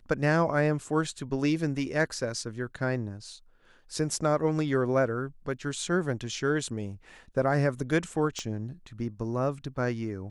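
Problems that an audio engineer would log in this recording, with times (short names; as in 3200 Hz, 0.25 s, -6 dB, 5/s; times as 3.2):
8.39 pop -21 dBFS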